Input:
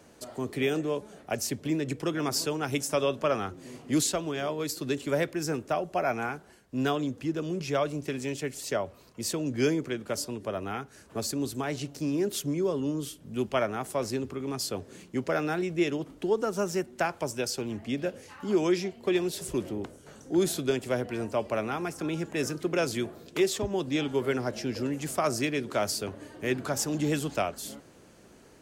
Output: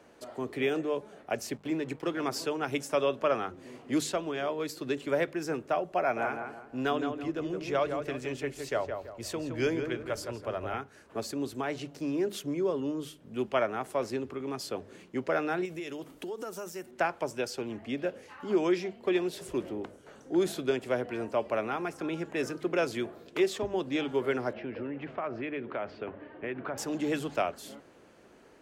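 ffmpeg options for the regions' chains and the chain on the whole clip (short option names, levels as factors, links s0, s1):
-filter_complex "[0:a]asettb=1/sr,asplit=3[s0][s1][s2];[s0]atrim=end=1.544[s3];[s1]atrim=start=1.54:end=2.24,asetpts=PTS-STARTPTS,afade=t=in:d=0.004:c=qsin,afade=t=out:st=0.696:d=0.004:c=qsin,bandreject=f=50:t=h:w=6,bandreject=f=100:t=h:w=6,bandreject=f=150:t=h:w=6,aeval=exprs='sgn(val(0))*max(abs(val(0))-0.00335,0)':c=same[s4];[s2]atrim=start=2.236[s5];[s3][s4]acrossfade=d=0.004:c1=hsin:c2=qsin[s6];[s6][s5]acrossfade=d=0.004:c1=qsin:c2=hsin,asettb=1/sr,asplit=3[s7][s8][s9];[s7]atrim=end=6.004[s10];[s8]atrim=start=6:end=10.74,asetpts=PTS-STARTPTS,afade=t=in:d=0.004:c=qsin,afade=t=out:st=4.736:d=0.004:c=qsin,asubboost=boost=9:cutoff=74,asplit=2[s11][s12];[s12]adelay=166,lowpass=f=1900:p=1,volume=0.531,asplit=2[s13][s14];[s14]adelay=166,lowpass=f=1900:p=1,volume=0.38,asplit=2[s15][s16];[s16]adelay=166,lowpass=f=1900:p=1,volume=0.38,asplit=2[s17][s18];[s18]adelay=166,lowpass=f=1900:p=1,volume=0.38,asplit=2[s19][s20];[s20]adelay=166,lowpass=f=1900:p=1,volume=0.38[s21];[s11][s13][s15][s17][s19][s21]amix=inputs=6:normalize=0,atrim=end_sample=209034[s22];[s9]atrim=start=10.736[s23];[s10][s22]acrossfade=d=0.004:c1=hsin:c2=qsin[s24];[s24][s23]acrossfade=d=0.004:c1=qsin:c2=hsin,asettb=1/sr,asplit=3[s25][s26][s27];[s25]atrim=end=15.654[s28];[s26]atrim=start=15.65:end=16.91,asetpts=PTS-STARTPTS,afade=t=in:d=0.004:c=qsin,afade=t=out:st=1.256:d=0.004:c=qsin,aemphasis=mode=production:type=75fm,acompressor=threshold=0.0251:ratio=12:attack=3.2:release=140:knee=1:detection=peak[s29];[s27]atrim=start=16.906[s30];[s28][s29]acrossfade=d=0.004:c1=hsin:c2=qsin[s31];[s31][s30]acrossfade=d=0.004:c1=qsin:c2=hsin,asettb=1/sr,asplit=3[s32][s33][s34];[s32]atrim=end=24.534[s35];[s33]atrim=start=24.53:end=26.78,asetpts=PTS-STARTPTS,afade=t=in:d=0.004:c=qsin,afade=t=out:st=2.246:d=0.004:c=qsin,lowpass=f=2800:w=0.5412,lowpass=f=2800:w=1.3066,acompressor=threshold=0.0355:ratio=6:attack=3.2:release=140:knee=1:detection=peak[s36];[s34]atrim=start=26.776[s37];[s35][s36]acrossfade=d=0.004:c1=hsin:c2=qsin[s38];[s38][s37]acrossfade=d=0.004:c1=qsin:c2=hsin,bass=f=250:g=-7,treble=f=4000:g=-10,bandreject=f=50:t=h:w=6,bandreject=f=100:t=h:w=6,bandreject=f=150:t=h:w=6,bandreject=f=200:t=h:w=6"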